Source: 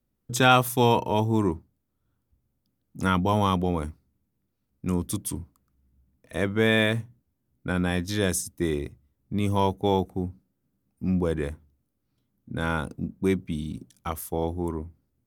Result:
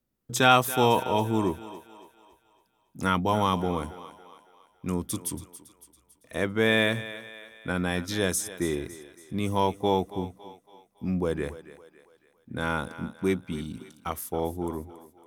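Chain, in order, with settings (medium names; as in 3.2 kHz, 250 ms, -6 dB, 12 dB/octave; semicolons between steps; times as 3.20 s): bass shelf 180 Hz -7 dB; on a send: thinning echo 279 ms, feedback 50%, high-pass 360 Hz, level -14 dB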